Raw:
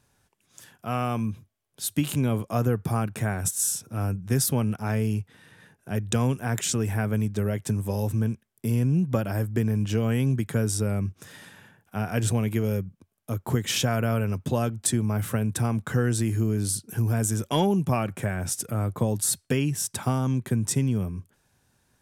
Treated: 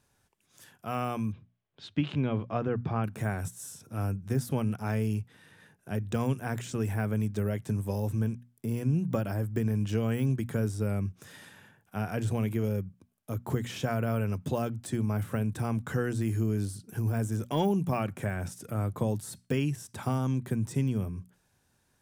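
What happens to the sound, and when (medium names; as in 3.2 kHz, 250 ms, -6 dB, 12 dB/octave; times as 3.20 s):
1.32–3.04 s: low-pass 3.7 kHz 24 dB/octave
whole clip: de-esser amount 90%; hum notches 60/120/180/240 Hz; trim -3.5 dB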